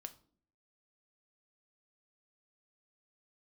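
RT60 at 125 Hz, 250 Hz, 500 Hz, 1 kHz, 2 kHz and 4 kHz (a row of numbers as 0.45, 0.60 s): 0.70, 0.75, 0.60, 0.45, 0.35, 0.35 s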